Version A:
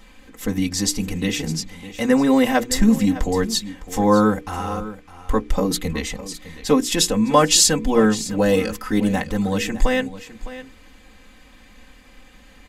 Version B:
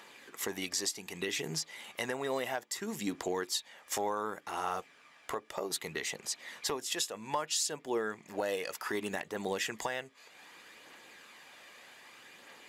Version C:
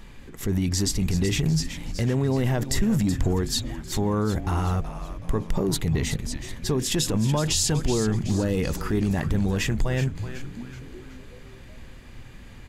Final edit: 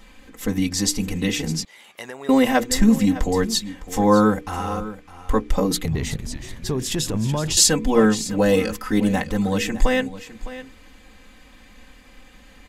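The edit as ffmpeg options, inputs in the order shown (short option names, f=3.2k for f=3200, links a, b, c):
-filter_complex "[0:a]asplit=3[a][b][c];[a]atrim=end=1.652[d];[1:a]atrim=start=1.648:end=2.292[e];[b]atrim=start=2.288:end=5.862[f];[2:a]atrim=start=5.858:end=7.572[g];[c]atrim=start=7.568[h];[d][e]acrossfade=d=0.004:c1=hsin:c2=hsin[i];[i][f]acrossfade=d=0.004:c1=hsin:c2=hsin[j];[j][g]acrossfade=d=0.004:c1=hsin:c2=hsin[k];[k][h]acrossfade=d=0.004:c1=hsin:c2=hsin"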